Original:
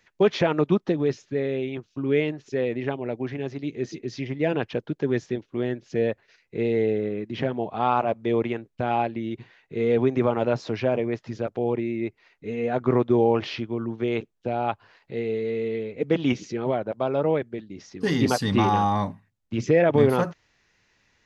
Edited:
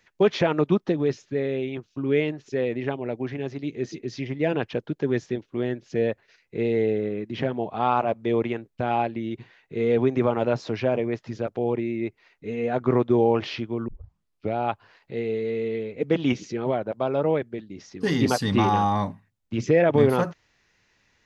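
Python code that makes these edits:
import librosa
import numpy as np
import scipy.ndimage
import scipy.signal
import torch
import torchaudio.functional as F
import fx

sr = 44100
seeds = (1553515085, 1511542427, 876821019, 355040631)

y = fx.edit(x, sr, fx.tape_start(start_s=13.88, length_s=0.67), tone=tone)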